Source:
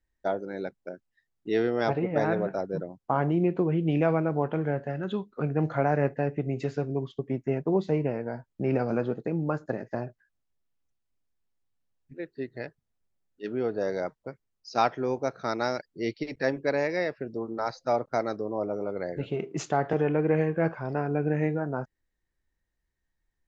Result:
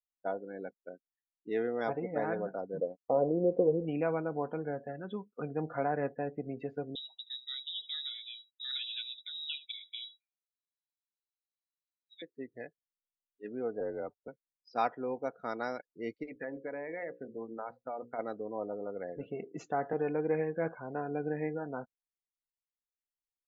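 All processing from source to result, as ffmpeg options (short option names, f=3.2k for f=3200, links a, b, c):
-filter_complex "[0:a]asettb=1/sr,asplit=3[a][b][c];[a]atrim=end=2.784[d];[b]atrim=start=2.78:end=3.85,asetpts=PTS-STARTPTS,afade=t=in:d=0.004:c=qsin,afade=t=out:st=1.066:d=0.004:c=qsin,lowpass=f=530:t=q:w=5.6,aeval=exprs='sgn(val(0))*max(abs(val(0))-0.00299,0)':c=same[e];[c]atrim=start=3.846[f];[d][e]acrossfade=d=0.004:c1=hsin:c2=qsin[g];[g][f]acrossfade=d=0.004:c1=qsin:c2=hsin,asettb=1/sr,asplit=3[h][i][j];[h]atrim=end=6.954[k];[i]atrim=start=6.95:end=12.22,asetpts=PTS-STARTPTS,afade=t=in:d=0.004:c=qsin,afade=t=out:st=5.266:d=0.004:c=qsin,equalizer=f=370:w=5:g=-15,aecho=1:1:75:0.188,atrim=end_sample=232407,lowpass=f=3.4k:t=q:w=0.5098,lowpass=f=3.4k:t=q:w=0.6013,lowpass=f=3.4k:t=q:w=0.9,lowpass=f=3.4k:t=q:w=2.563,afreqshift=-4000[l];[j]atrim=start=12.216[m];[k][l]acrossfade=d=0.004:c1=hsin:c2=qsin[n];[n][m]acrossfade=d=0.004:c1=qsin:c2=hsin,asettb=1/sr,asplit=3[o][p][q];[o]atrim=end=13.804[r];[p]atrim=start=13.8:end=14.28,asetpts=PTS-STARTPTS,afade=t=in:d=0.004:c=qsin,afade=t=out:st=0.476:d=0.004:c=qsin,highshelf=f=2.7k:g=-10,afreqshift=-46[s];[q]atrim=start=14.276[t];[r][s]acrossfade=d=0.004:c1=hsin:c2=qsin[u];[u][t]acrossfade=d=0.004:c1=qsin:c2=hsin,asettb=1/sr,asplit=3[v][w][x];[v]atrim=end=16.294[y];[w]atrim=start=16.29:end=18.19,asetpts=PTS-STARTPTS,afade=t=in:d=0.004:c=qsin,afade=t=out:st=1.896:d=0.004:c=qsin,lowpass=f=3k:w=0.5412,lowpass=f=3k:w=1.3066,bandreject=f=60:t=h:w=6,bandreject=f=120:t=h:w=6,bandreject=f=180:t=h:w=6,bandreject=f=240:t=h:w=6,bandreject=f=300:t=h:w=6,bandreject=f=360:t=h:w=6,bandreject=f=420:t=h:w=6,bandreject=f=480:t=h:w=6,bandreject=f=540:t=h:w=6,acompressor=threshold=-27dB:ratio=10:attack=3.2:release=140:knee=1:detection=peak[z];[x]atrim=start=18.186[aa];[y][z]acrossfade=d=0.004:c1=hsin:c2=qsin[ab];[ab][aa]acrossfade=d=0.004:c1=qsin:c2=hsin,afftdn=nr=23:nf=-41,bass=f=250:g=-5,treble=f=4k:g=-10,aecho=1:1:4.1:0.34,volume=-7dB"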